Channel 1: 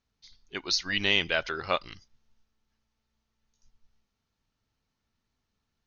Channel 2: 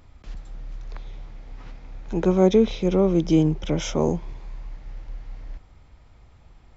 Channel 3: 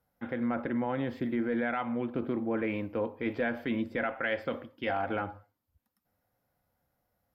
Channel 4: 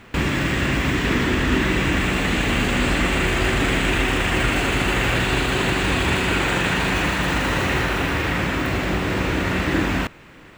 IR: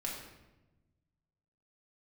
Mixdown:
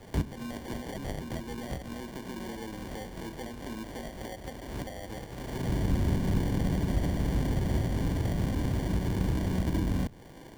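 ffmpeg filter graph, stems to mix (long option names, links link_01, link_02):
-filter_complex "[0:a]volume=-7.5dB[link_01];[1:a]lowshelf=frequency=430:gain=-9,flanger=delay=17:depth=5.1:speed=0.58,volume=-20dB[link_02];[2:a]volume=-7.5dB,asplit=2[link_03][link_04];[3:a]volume=-3.5dB[link_05];[link_04]apad=whole_len=466389[link_06];[link_05][link_06]sidechaincompress=threshold=-58dB:ratio=8:attack=20:release=352[link_07];[link_01][link_02][link_03][link_07]amix=inputs=4:normalize=0,acrusher=samples=34:mix=1:aa=0.000001,acrossover=split=240[link_08][link_09];[link_09]acompressor=threshold=-37dB:ratio=5[link_10];[link_08][link_10]amix=inputs=2:normalize=0"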